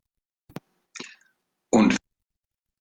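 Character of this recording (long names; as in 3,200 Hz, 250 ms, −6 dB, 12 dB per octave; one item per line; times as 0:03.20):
a quantiser's noise floor 12 bits, dither none
sample-and-hold tremolo 3.5 Hz
Opus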